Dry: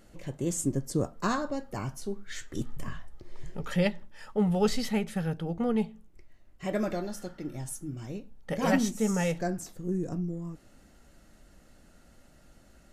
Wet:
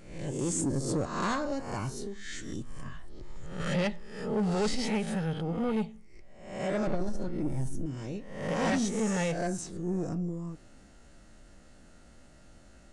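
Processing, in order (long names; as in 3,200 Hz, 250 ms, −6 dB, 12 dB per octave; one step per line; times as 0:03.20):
peak hold with a rise ahead of every peak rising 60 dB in 0.67 s
0:01.91–0:03.60: downward compressor 4 to 1, threshold −34 dBFS, peak gain reduction 8.5 dB
0:06.87–0:07.86: spectral tilt −3 dB per octave
soft clipping −23.5 dBFS, distortion −12 dB
downsampling to 22,050 Hz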